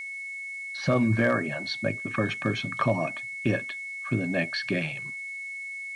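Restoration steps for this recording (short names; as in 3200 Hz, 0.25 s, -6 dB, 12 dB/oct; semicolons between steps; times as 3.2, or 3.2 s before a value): clip repair -14 dBFS; notch 2200 Hz, Q 30; noise print and reduce 30 dB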